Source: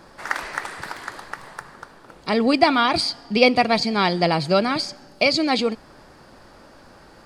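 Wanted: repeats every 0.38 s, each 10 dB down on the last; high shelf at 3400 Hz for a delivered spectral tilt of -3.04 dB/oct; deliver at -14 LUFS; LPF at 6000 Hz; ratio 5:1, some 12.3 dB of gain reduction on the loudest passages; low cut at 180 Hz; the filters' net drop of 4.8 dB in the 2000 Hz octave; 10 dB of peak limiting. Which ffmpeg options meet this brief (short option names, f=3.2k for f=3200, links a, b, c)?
-af "highpass=180,lowpass=6k,equalizer=f=2k:t=o:g=-4,highshelf=f=3.4k:g=-6,acompressor=threshold=-26dB:ratio=5,alimiter=limit=-22dB:level=0:latency=1,aecho=1:1:380|760|1140|1520:0.316|0.101|0.0324|0.0104,volume=19.5dB"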